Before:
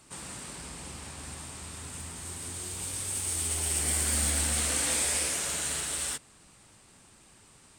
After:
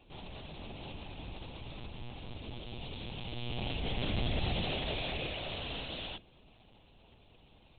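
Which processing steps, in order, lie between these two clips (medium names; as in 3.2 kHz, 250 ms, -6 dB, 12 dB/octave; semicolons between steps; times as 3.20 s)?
high-order bell 1.5 kHz -12 dB 1.2 oct; hum notches 60/120/180/240/300/360/420/480/540 Hz; monotone LPC vocoder at 8 kHz 120 Hz; trim +1 dB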